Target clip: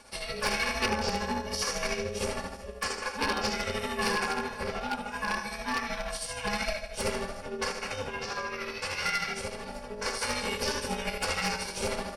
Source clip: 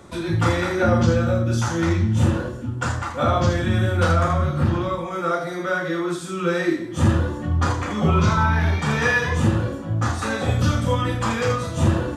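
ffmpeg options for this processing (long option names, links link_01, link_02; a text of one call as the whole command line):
ffmpeg -i in.wav -filter_complex "[0:a]asettb=1/sr,asplit=3[link_01][link_02][link_03];[link_01]atrim=end=7.674[link_04];[link_02]atrim=start=7.67:end=9.75,asetpts=PTS-STARTPTS,afade=type=in:duration=0.004:curve=qsin,afade=type=out:start_time=2.076:duration=0.004:curve=qsin,acompressor=threshold=-21dB:ratio=6[link_05];[link_03]atrim=start=9.746[link_06];[link_04][link_05]acrossfade=duration=0.004:curve1=hsin:curve2=qsin[link_07];[link_07][link_06]acrossfade=duration=0.004:curve1=qsin:curve2=hsin,highpass=99,tiltshelf=frequency=720:gain=-5,aecho=1:1:3.6:0.94,aecho=1:1:76|152|228|304|380|456:0.282|0.161|0.0916|0.0522|0.0298|0.017,aeval=exprs='val(0)*sin(2*PI*310*n/s)':channel_layout=same,aeval=exprs='(tanh(2.24*val(0)+0.6)-tanh(0.6))/2.24':channel_layout=same,tremolo=f=13:d=0.46,aeval=exprs='0.15*(abs(mod(val(0)/0.15+3,4)-2)-1)':channel_layout=same,superequalizer=7b=2.24:12b=2:14b=3.16:16b=2.82,volume=-4.5dB" out.wav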